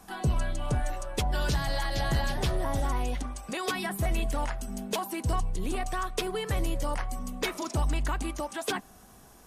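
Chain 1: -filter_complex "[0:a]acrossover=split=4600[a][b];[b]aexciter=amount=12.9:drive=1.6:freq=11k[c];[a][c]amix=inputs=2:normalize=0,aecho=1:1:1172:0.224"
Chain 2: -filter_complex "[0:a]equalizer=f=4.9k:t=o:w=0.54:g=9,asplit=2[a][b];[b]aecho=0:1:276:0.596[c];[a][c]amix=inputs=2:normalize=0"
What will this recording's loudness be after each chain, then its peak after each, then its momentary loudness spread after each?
-29.5, -30.0 LUFS; -12.0, -14.5 dBFS; 6, 6 LU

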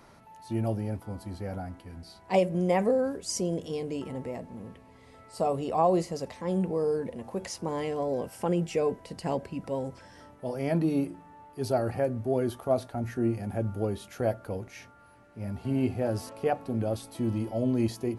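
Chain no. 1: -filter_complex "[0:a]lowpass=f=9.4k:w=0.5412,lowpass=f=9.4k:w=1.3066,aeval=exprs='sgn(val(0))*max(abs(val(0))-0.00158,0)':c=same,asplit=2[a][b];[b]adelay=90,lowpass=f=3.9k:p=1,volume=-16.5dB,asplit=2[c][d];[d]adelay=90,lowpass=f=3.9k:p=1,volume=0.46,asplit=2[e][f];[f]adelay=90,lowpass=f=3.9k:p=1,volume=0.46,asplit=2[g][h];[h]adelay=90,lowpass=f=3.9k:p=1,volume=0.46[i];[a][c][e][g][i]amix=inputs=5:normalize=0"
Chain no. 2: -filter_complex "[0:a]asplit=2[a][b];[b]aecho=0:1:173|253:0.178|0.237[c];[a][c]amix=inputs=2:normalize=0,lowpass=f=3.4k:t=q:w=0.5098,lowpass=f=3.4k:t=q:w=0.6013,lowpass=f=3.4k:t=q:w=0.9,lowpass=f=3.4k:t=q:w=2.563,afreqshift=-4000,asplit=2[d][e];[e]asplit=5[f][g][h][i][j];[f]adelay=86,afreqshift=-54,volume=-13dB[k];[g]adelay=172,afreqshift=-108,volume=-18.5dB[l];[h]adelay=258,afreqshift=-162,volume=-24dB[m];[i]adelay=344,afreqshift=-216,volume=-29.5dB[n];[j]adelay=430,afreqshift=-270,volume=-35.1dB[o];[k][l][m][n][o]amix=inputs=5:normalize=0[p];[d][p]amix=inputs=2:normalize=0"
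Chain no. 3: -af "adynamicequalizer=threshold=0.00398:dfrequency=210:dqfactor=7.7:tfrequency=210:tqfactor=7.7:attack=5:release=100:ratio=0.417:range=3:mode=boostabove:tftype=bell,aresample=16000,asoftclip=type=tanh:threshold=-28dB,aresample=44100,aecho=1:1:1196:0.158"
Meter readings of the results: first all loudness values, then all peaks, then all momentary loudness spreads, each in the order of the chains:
-30.5, -26.0, -35.0 LUFS; -11.5, -11.5, -25.5 dBFS; 13, 12, 12 LU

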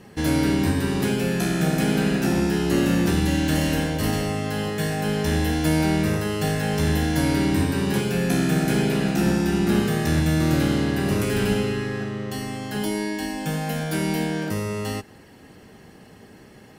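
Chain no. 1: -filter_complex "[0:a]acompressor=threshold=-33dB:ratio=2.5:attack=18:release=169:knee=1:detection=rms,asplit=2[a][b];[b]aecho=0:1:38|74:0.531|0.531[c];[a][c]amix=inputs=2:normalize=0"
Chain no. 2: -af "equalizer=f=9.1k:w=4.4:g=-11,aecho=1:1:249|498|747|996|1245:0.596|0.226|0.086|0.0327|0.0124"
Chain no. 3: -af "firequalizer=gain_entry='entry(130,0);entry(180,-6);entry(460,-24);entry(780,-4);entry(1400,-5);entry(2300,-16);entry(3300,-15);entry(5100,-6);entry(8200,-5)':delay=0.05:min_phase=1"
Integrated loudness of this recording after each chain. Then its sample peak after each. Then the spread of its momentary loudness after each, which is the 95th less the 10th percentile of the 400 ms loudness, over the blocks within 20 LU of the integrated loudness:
-29.5, -21.0, -29.0 LUFS; -16.0, -6.0, -13.5 dBFS; 4, 8, 8 LU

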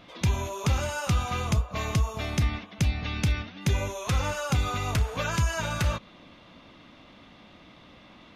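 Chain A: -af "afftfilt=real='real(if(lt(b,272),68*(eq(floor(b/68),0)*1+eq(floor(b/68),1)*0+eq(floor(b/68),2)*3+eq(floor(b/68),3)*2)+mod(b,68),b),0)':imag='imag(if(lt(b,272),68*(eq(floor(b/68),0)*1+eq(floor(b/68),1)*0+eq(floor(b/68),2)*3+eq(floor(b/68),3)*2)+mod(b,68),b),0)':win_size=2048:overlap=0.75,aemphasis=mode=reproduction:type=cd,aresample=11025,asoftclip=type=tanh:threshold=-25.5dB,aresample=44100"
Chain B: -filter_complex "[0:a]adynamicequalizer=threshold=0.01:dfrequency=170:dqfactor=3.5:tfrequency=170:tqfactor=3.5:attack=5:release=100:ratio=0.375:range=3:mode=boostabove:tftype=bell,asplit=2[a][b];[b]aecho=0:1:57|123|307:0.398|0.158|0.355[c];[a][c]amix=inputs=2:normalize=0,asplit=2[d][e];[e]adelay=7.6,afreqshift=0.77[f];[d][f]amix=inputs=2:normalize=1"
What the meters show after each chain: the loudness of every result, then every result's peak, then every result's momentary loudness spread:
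-30.0, -30.0 LUFS; -23.5, -14.0 dBFS; 2, 2 LU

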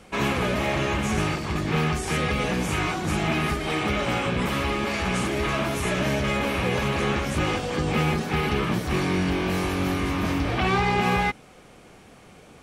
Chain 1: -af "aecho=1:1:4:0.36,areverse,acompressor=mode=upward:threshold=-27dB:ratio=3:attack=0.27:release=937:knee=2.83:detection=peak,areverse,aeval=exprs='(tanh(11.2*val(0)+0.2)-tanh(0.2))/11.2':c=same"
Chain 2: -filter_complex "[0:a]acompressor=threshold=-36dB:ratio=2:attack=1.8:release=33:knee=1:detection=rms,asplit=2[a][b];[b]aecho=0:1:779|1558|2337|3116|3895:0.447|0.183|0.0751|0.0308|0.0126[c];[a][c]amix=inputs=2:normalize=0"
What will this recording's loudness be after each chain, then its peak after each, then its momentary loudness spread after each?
-27.0, -32.5 LUFS; -19.5, -19.5 dBFS; 2, 2 LU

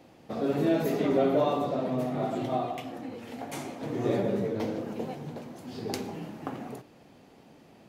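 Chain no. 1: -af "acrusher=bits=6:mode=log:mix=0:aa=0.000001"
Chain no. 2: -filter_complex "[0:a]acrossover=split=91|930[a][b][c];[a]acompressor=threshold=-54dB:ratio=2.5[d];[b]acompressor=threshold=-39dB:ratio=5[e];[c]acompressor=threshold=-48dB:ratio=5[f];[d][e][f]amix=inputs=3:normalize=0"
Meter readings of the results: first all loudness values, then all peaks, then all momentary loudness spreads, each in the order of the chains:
-30.5, -41.0 LUFS; -13.0, -23.5 dBFS; 15, 8 LU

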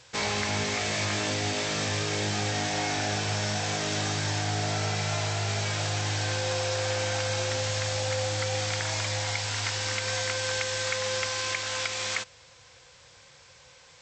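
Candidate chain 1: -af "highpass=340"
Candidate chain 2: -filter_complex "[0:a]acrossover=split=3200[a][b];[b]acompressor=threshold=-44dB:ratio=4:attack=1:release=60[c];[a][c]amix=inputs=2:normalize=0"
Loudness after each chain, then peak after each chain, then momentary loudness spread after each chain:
-29.0, -30.5 LUFS; -16.5, -18.5 dBFS; 2, 2 LU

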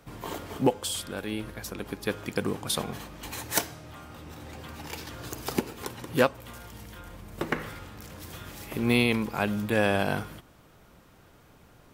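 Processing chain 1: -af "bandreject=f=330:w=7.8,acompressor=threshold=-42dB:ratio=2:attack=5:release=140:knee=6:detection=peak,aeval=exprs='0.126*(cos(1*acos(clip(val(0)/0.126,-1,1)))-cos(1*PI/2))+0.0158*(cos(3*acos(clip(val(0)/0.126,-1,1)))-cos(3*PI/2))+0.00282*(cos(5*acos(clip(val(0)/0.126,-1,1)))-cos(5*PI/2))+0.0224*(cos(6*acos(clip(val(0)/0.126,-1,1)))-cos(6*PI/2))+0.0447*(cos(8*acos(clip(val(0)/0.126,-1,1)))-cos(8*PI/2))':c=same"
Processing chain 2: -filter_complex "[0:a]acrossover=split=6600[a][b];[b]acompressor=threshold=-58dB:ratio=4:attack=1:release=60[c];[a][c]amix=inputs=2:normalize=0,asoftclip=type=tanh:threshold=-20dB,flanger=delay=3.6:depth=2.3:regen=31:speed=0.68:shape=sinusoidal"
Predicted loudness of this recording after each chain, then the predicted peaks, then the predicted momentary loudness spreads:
-40.0, -36.5 LUFS; -14.5, -20.5 dBFS; 21, 17 LU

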